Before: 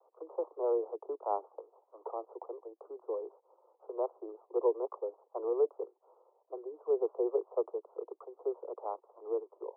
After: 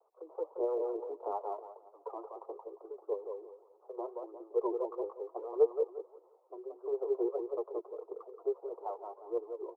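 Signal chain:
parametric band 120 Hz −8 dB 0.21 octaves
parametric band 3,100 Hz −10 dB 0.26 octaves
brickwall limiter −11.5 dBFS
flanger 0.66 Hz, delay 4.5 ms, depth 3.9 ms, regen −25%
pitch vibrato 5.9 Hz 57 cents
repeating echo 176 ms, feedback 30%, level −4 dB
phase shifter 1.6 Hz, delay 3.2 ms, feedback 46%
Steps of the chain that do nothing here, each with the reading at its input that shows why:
parametric band 120 Hz: nothing at its input below 300 Hz
parametric band 3,100 Hz: nothing at its input above 1,200 Hz
brickwall limiter −11.5 dBFS: peak of its input −18.0 dBFS

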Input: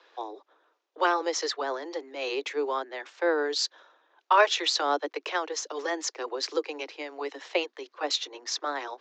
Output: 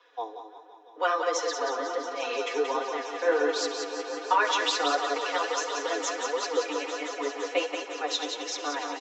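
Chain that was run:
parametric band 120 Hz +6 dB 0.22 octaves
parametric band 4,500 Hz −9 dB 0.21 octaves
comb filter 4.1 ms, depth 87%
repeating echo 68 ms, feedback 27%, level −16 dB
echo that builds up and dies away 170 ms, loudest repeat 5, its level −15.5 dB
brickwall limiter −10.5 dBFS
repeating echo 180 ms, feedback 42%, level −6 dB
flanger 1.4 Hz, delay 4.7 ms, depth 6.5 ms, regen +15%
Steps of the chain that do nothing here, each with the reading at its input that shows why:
parametric band 120 Hz: nothing at its input below 250 Hz

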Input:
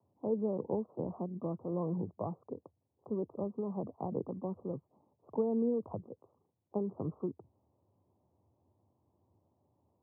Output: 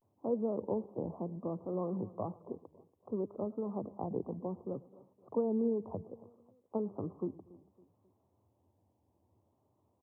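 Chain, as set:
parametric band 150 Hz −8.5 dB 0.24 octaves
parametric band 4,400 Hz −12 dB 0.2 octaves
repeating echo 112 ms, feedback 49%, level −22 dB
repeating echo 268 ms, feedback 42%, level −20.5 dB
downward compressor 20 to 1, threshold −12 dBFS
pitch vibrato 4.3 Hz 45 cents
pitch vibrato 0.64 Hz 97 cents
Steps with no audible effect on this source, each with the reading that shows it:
parametric band 4,400 Hz: nothing at its input above 1,100 Hz
downward compressor, threshold −12 dBFS: peak of its input −22.0 dBFS

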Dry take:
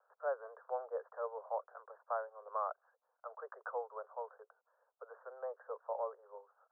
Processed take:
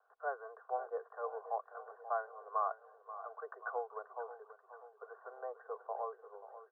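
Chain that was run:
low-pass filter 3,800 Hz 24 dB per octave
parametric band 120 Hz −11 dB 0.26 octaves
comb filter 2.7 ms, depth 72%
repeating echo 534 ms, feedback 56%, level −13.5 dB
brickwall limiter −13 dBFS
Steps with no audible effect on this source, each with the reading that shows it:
low-pass filter 3,800 Hz: nothing at its input above 1,700 Hz
parametric band 120 Hz: nothing at its input below 360 Hz
brickwall limiter −13 dBFS: peak of its input −23.0 dBFS

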